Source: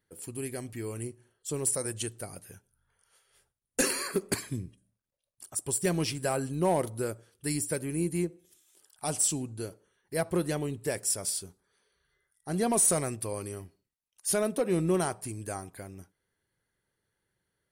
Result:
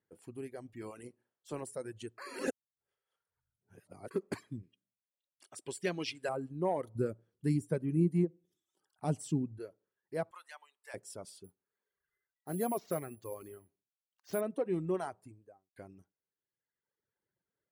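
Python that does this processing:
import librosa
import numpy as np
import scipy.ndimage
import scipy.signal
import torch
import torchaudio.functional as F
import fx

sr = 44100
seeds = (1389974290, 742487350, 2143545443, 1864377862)

y = fx.spec_clip(x, sr, under_db=14, at=(0.8, 1.64), fade=0.02)
y = fx.weighting(y, sr, curve='D', at=(4.63, 6.29))
y = fx.peak_eq(y, sr, hz=150.0, db=12.5, octaves=2.2, at=(6.95, 9.59))
y = fx.highpass(y, sr, hz=950.0, slope=24, at=(10.31, 10.94))
y = fx.resample_bad(y, sr, factor=4, down='filtered', up='zero_stuff', at=(11.44, 14.41))
y = fx.studio_fade_out(y, sr, start_s=15.05, length_s=0.71)
y = fx.edit(y, sr, fx.reverse_span(start_s=2.18, length_s=1.93), tone=tone)
y = fx.lowpass(y, sr, hz=1000.0, slope=6)
y = fx.dereverb_blind(y, sr, rt60_s=1.4)
y = fx.highpass(y, sr, hz=200.0, slope=6)
y = y * 10.0 ** (-3.0 / 20.0)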